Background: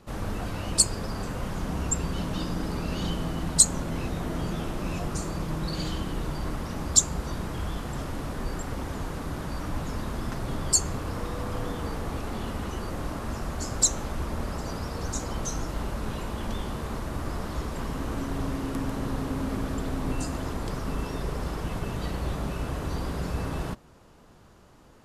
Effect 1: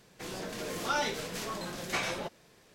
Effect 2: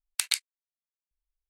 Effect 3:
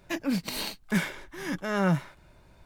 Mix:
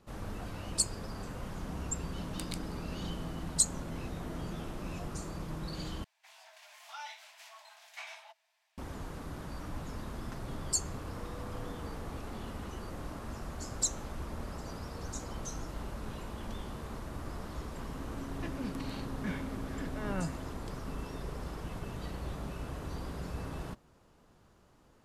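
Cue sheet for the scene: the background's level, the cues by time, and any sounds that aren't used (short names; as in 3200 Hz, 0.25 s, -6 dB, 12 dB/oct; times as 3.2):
background -9 dB
2.2 add 2 -17 dB
6.04 replace with 1 -10.5 dB + rippled Chebyshev high-pass 630 Hz, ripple 6 dB
18.32 add 3 -11.5 dB + air absorption 140 m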